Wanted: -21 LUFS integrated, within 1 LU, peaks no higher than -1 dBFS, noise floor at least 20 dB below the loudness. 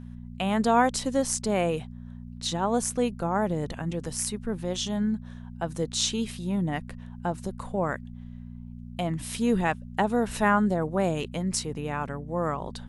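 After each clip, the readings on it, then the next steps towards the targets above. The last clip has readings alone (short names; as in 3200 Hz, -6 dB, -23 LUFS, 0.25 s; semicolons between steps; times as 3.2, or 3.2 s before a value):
hum 60 Hz; harmonics up to 240 Hz; hum level -38 dBFS; loudness -28.0 LUFS; peak -8.5 dBFS; loudness target -21.0 LUFS
-> de-hum 60 Hz, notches 4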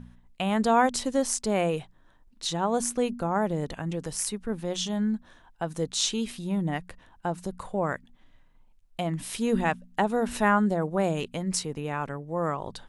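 hum none; loudness -28.5 LUFS; peak -9.0 dBFS; loudness target -21.0 LUFS
-> gain +7.5 dB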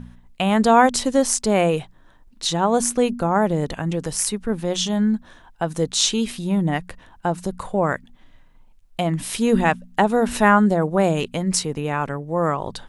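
loudness -21.0 LUFS; peak -1.5 dBFS; noise floor -50 dBFS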